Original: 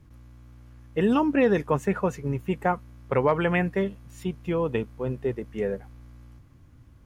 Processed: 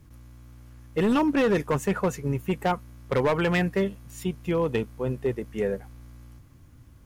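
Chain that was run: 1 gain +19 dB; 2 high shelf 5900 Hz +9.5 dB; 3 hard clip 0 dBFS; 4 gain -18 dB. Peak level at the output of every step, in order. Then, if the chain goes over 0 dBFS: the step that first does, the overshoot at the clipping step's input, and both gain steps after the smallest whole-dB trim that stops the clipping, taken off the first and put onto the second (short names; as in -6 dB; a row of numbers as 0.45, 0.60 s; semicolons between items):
+8.5, +8.5, 0.0, -18.0 dBFS; step 1, 8.5 dB; step 1 +10 dB, step 4 -9 dB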